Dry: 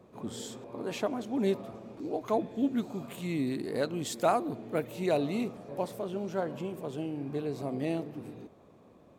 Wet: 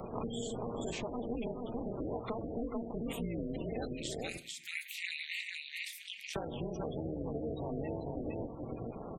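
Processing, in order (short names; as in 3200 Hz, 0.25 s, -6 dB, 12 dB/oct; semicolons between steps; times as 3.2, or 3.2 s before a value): 3.93–6.36 elliptic high-pass 2100 Hz, stop band 50 dB; compressor 6:1, threshold -42 dBFS, peak gain reduction 17.5 dB; echo 0.439 s -5 dB; AM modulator 230 Hz, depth 100%; reverb RT60 0.55 s, pre-delay 3 ms, DRR 11 dB; sample leveller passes 1; spectral gate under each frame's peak -20 dB strong; three-band squash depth 70%; gain +6 dB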